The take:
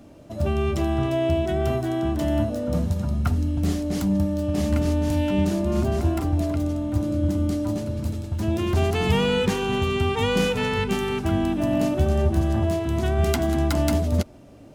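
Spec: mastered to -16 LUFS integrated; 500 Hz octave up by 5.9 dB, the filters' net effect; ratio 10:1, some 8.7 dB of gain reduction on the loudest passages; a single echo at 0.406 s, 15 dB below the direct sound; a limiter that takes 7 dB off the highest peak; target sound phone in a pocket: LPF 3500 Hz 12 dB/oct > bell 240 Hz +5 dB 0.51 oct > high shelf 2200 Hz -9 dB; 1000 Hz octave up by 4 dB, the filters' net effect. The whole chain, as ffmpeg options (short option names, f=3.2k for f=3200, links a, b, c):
-af "equalizer=f=500:t=o:g=7,equalizer=f=1k:t=o:g=4,acompressor=threshold=-22dB:ratio=10,alimiter=limit=-20dB:level=0:latency=1,lowpass=3.5k,equalizer=f=240:t=o:w=0.51:g=5,highshelf=f=2.2k:g=-9,aecho=1:1:406:0.178,volume=11.5dB"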